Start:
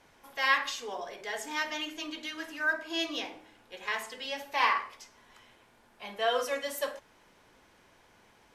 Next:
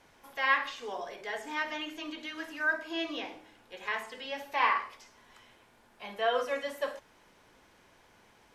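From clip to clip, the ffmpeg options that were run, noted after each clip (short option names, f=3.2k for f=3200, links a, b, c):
-filter_complex "[0:a]acrossover=split=3200[a][b];[b]acompressor=threshold=-53dB:ratio=4:attack=1:release=60[c];[a][c]amix=inputs=2:normalize=0"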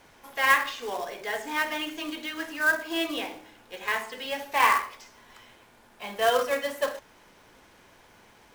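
-af "acrusher=bits=3:mode=log:mix=0:aa=0.000001,volume=5.5dB"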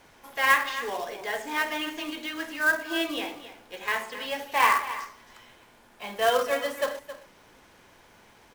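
-af "aecho=1:1:268:0.211"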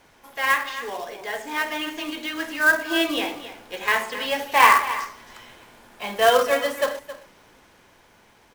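-af "dynaudnorm=f=230:g=17:m=8dB"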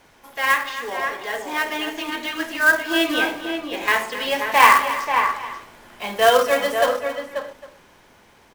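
-filter_complex "[0:a]asplit=2[a][b];[b]adelay=536.4,volume=-6dB,highshelf=f=4k:g=-12.1[c];[a][c]amix=inputs=2:normalize=0,volume=2dB"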